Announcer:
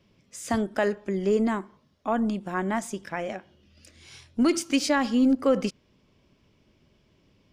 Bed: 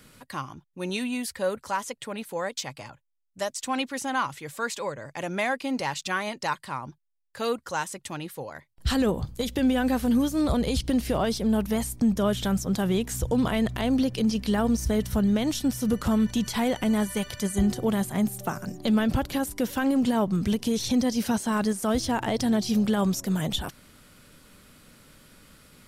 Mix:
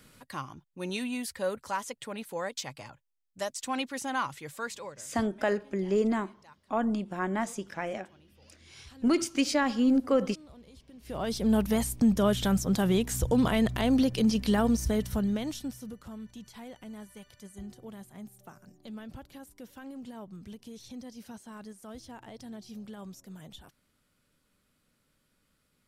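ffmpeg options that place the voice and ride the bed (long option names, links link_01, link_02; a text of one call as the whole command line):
ffmpeg -i stem1.wav -i stem2.wav -filter_complex "[0:a]adelay=4650,volume=-3dB[link_01];[1:a]volume=23.5dB,afade=type=out:start_time=4.47:duration=0.7:silence=0.0630957,afade=type=in:start_time=11:duration=0.53:silence=0.0421697,afade=type=out:start_time=14.52:duration=1.44:silence=0.105925[link_02];[link_01][link_02]amix=inputs=2:normalize=0" out.wav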